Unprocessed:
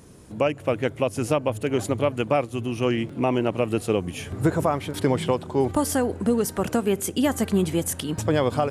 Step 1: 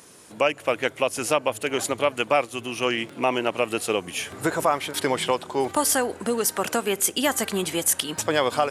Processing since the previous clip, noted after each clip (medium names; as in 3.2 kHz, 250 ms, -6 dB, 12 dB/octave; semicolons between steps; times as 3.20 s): high-pass 1.2 kHz 6 dB/octave; trim +7.5 dB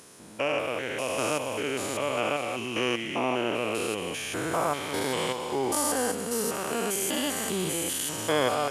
spectrogram pixelated in time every 200 ms; feedback echo behind a high-pass 229 ms, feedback 63%, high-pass 2.2 kHz, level -10 dB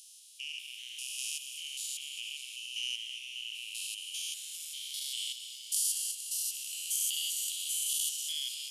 Chebyshev high-pass 2.9 kHz, order 5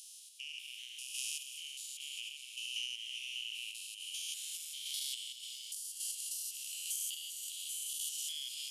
compression 4:1, threshold -37 dBFS, peak gain reduction 9 dB; random-step tremolo; trim +1.5 dB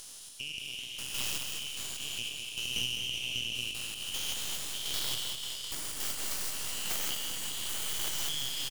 tracing distortion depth 0.16 ms; on a send: feedback delay 207 ms, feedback 36%, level -6 dB; on the sum: trim +6 dB